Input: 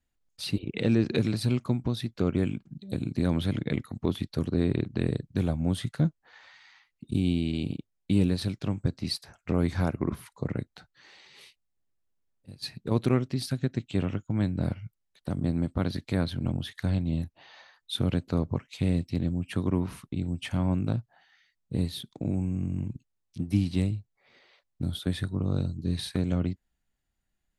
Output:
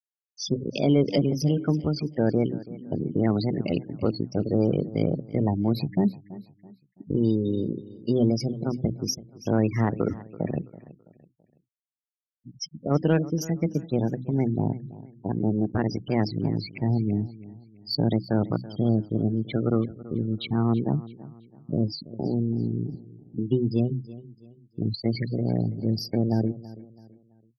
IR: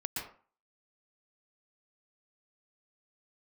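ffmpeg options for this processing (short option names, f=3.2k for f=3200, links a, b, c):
-filter_complex "[0:a]bandreject=f=50:t=h:w=6,bandreject=f=100:t=h:w=6,bandreject=f=150:t=h:w=6,bandreject=f=200:t=h:w=6,bandreject=f=250:t=h:w=6,afftfilt=real='re*gte(hypot(re,im),0.0282)':imag='im*gte(hypot(re,im),0.0282)':win_size=1024:overlap=0.75,asetrate=55563,aresample=44100,atempo=0.793701,acontrast=76,asplit=2[a][b];[b]aecho=0:1:331|662|993:0.126|0.0453|0.0163[c];[a][c]amix=inputs=2:normalize=0,volume=-3dB"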